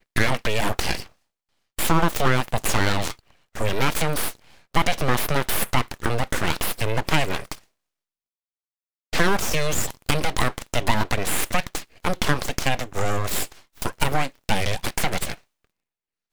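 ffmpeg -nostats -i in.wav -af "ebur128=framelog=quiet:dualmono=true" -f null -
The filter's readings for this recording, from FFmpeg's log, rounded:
Integrated loudness:
  I:         -21.7 LUFS
  Threshold: -32.0 LUFS
Loudness range:
  LRA:         2.8 LU
  Threshold: -42.4 LUFS
  LRA low:   -24.1 LUFS
  LRA high:  -21.3 LUFS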